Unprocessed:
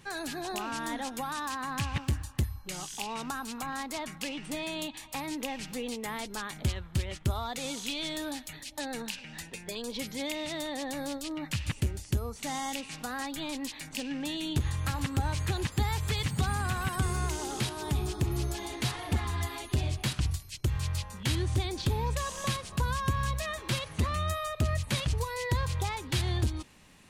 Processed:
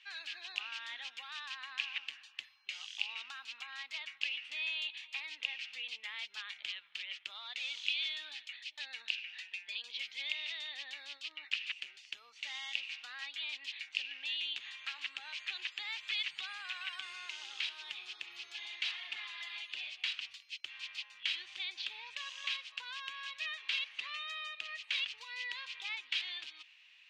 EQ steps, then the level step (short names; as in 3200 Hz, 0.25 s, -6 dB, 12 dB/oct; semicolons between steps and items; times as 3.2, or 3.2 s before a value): band-pass 2700 Hz, Q 2.8; air absorption 210 m; differentiator; +16.5 dB